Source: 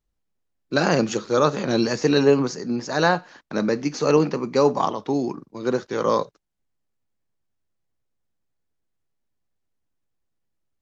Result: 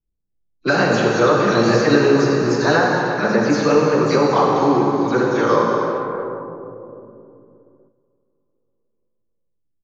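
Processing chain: delay that grows with frequency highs early, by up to 106 ms; peaking EQ 1.4 kHz +4.5 dB 1.2 oct; compression 6:1, threshold -21 dBFS, peak gain reduction 10 dB; tempo 1.1×; treble shelf 5.3 kHz -6 dB; plate-style reverb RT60 4.1 s, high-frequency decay 0.65×, DRR -2 dB; gate -55 dBFS, range -8 dB; level-controlled noise filter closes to 360 Hz, open at -20 dBFS; trim +6.5 dB

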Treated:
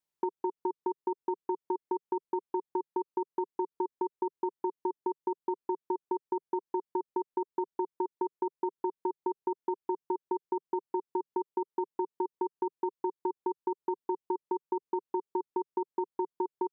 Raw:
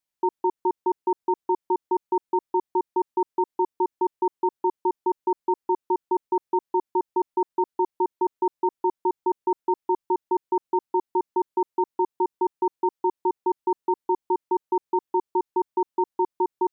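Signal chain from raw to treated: fifteen-band graphic EQ 160 Hz +8 dB, 400 Hz +8 dB, 1 kHz +4 dB; compression, threshold -25 dBFS, peak gain reduction 12 dB; trim -4.5 dB

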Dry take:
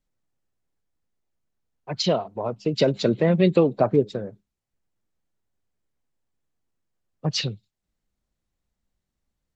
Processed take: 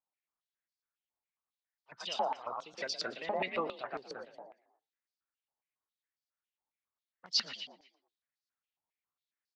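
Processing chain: pitch shift switched off and on +3 st, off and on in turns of 94 ms; frequency-shifting echo 117 ms, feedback 38%, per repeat +42 Hz, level -3.5 dB; step-sequenced band-pass 7.3 Hz 880–4700 Hz

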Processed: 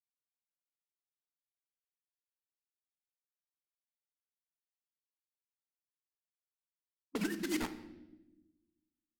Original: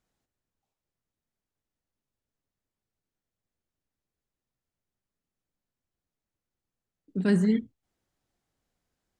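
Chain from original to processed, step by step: formants replaced by sine waves; de-hum 320.2 Hz, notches 34; word length cut 6-bit, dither none; harmonic-percussive split harmonic -13 dB; compressor with a negative ratio -36 dBFS, ratio -0.5; level-controlled noise filter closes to 340 Hz, open at -36.5 dBFS; on a send: reverberation RT60 1.0 s, pre-delay 3 ms, DRR 9 dB

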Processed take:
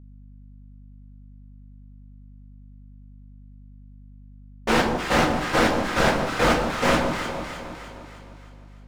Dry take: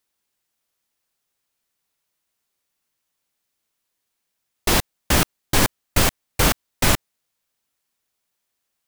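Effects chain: low-pass 4.8 kHz; three-band isolator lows -13 dB, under 160 Hz, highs -14 dB, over 2 kHz; waveshaping leveller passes 5; peak limiter -18 dBFS, peak gain reduction 8.5 dB; in parallel at -4 dB: saturation -31 dBFS, distortion -13 dB; on the sum: echo whose repeats swap between lows and highs 154 ms, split 1 kHz, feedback 70%, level -5 dB; two-slope reverb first 0.32 s, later 2.9 s, from -18 dB, DRR -6.5 dB; hum 50 Hz, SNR 19 dB; loudspeaker Doppler distortion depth 0.32 ms; trim -6 dB

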